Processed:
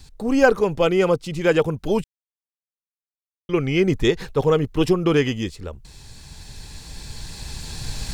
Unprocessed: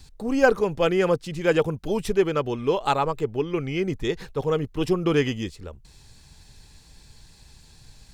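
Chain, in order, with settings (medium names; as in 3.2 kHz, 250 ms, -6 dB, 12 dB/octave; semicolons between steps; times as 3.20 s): recorder AGC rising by 6.3 dB/s; 0.81–1.40 s: band-stop 1.7 kHz, Q 5.3; 2.04–3.49 s: mute; trim +2.5 dB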